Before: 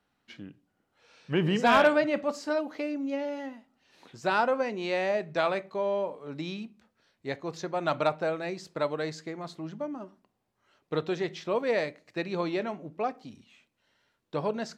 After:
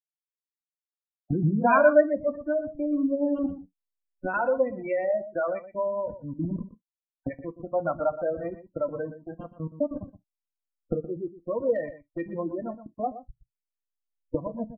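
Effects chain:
hold until the input has moved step −31 dBFS
camcorder AGC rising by 13 dB per second
gate on every frequency bin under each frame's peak −15 dB strong
high-shelf EQ 2,500 Hz +12 dB
in parallel at −3 dB: downward compressor 6 to 1, threshold −32 dBFS, peak gain reduction 15.5 dB
on the sum: notch comb filter 420 Hz
0:03.46–0:04.34: phases set to zero 92.7 Hz
0:11.58–0:12.33: gain into a clipping stage and back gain 20.5 dB
single-tap delay 121 ms −9 dB
on a send at −9 dB: convolution reverb, pre-delay 3 ms
on the sum: every bin expanded away from the loudest bin 1.5 to 1

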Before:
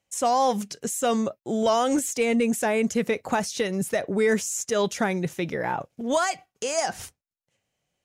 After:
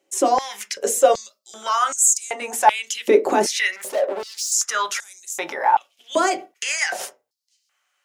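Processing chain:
in parallel at +1 dB: speech leveller 0.5 s
on the sum: brickwall limiter −13.5 dBFS, peak gain reduction 8.5 dB
0:03.76–0:04.52: hard clipping −29.5 dBFS, distortion −12 dB
0:05.50–0:06.16: downward compressor 2 to 1, threshold −26 dBFS, peak gain reduction 5 dB
on a send at −4.5 dB: convolution reverb RT60 0.25 s, pre-delay 3 ms
on the sum: high-pass on a step sequencer 2.6 Hz 360–7,200 Hz

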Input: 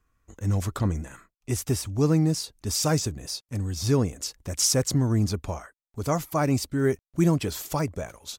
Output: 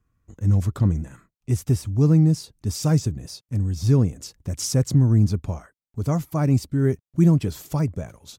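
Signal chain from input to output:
parametric band 130 Hz +13 dB 2.6 octaves
level −5.5 dB

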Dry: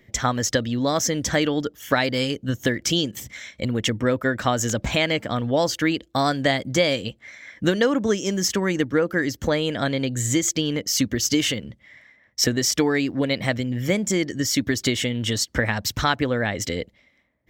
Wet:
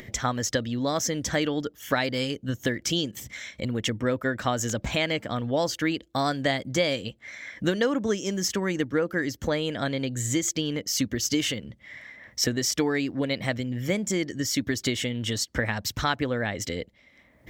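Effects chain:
upward compression, threshold −27 dBFS
level −4.5 dB

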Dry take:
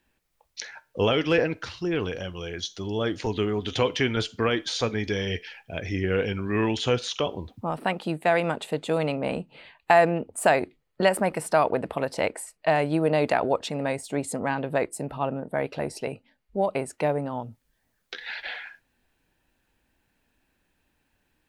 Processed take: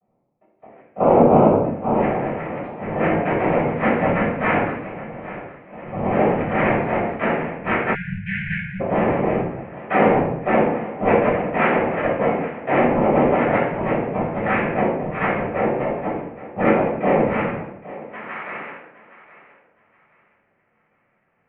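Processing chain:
adaptive Wiener filter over 9 samples
low-pass filter sweep 450 Hz → 1,200 Hz, 0:01.55–0:02.14
brickwall limiter −13.5 dBFS, peak gain reduction 11 dB
0:04.72–0:05.85: output level in coarse steps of 20 dB
cochlear-implant simulation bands 4
single-sideband voice off tune −120 Hz 270–2,500 Hz
feedback echo with a high-pass in the loop 816 ms, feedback 26%, high-pass 260 Hz, level −16 dB
convolution reverb RT60 0.75 s, pre-delay 7 ms, DRR −8.5 dB
0:07.95–0:08.81: time-frequency box erased 210–1,400 Hz
level −3.5 dB

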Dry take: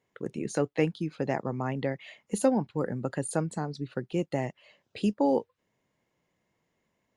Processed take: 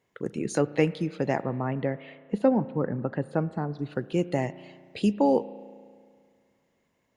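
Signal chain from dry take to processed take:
0:01.43–0:03.79: high-frequency loss of the air 380 metres
convolution reverb RT60 2.0 s, pre-delay 34 ms, DRR 16 dB
level +3 dB

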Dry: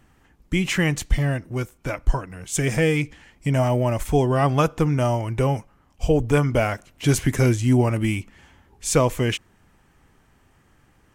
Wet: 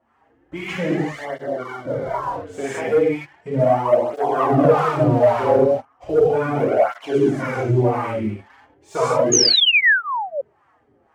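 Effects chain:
0:04.42–0:05.57: converter with a step at zero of −21 dBFS
in parallel at 0 dB: downward compressor, threshold −31 dBFS, peak gain reduction 18.5 dB
on the sum: two-band tremolo in antiphase 2.2 Hz, depth 50%, crossover 660 Hz
reverb whose tail is shaped and stops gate 260 ms flat, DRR −8 dB
LFO wah 1.9 Hz 390–1,100 Hz, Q 2.1
leveller curve on the samples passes 1
0:01.25–0:02.22: Butterworth band-reject 2,500 Hz, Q 5.6
0:09.32–0:10.41: sound drawn into the spectrogram fall 540–6,800 Hz −14 dBFS
through-zero flanger with one copy inverted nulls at 0.36 Hz, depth 6.9 ms
level +2 dB

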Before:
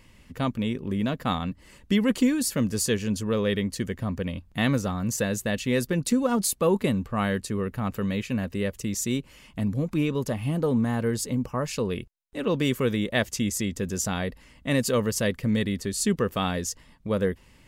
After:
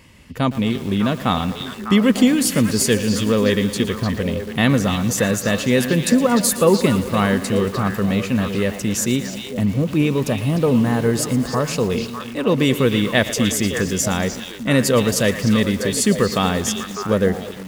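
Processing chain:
high-pass filter 52 Hz 12 dB per octave
echo through a band-pass that steps 300 ms, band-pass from 3,700 Hz, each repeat −1.4 octaves, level −2.5 dB
feedback echo at a low word length 115 ms, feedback 80%, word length 6 bits, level −14 dB
level +7.5 dB

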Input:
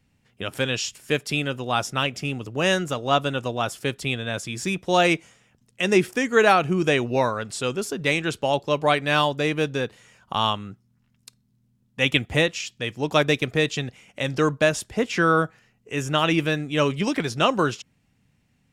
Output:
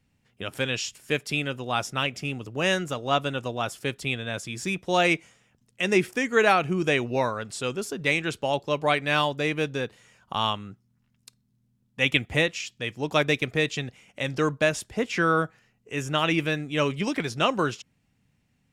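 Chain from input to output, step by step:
dynamic equaliser 2,200 Hz, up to +4 dB, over −35 dBFS, Q 2.7
level −3.5 dB

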